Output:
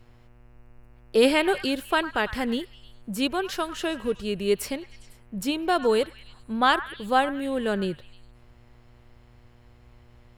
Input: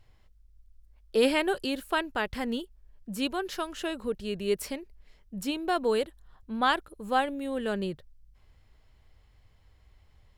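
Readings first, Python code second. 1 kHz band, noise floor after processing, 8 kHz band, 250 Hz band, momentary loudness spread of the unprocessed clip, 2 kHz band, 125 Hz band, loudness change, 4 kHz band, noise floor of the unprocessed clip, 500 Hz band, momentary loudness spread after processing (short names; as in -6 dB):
+4.5 dB, -54 dBFS, +4.5 dB, +4.5 dB, 12 LU, +5.0 dB, +5.0 dB, +4.5 dB, +4.5 dB, -61 dBFS, +4.5 dB, 12 LU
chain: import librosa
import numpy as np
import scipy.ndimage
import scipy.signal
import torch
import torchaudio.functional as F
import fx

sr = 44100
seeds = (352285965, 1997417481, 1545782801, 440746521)

y = fx.echo_stepped(x, sr, ms=101, hz=1400.0, octaves=0.7, feedback_pct=70, wet_db=-11)
y = fx.dmg_buzz(y, sr, base_hz=120.0, harmonics=24, level_db=-62.0, tilt_db=-6, odd_only=False)
y = y * 10.0 ** (4.5 / 20.0)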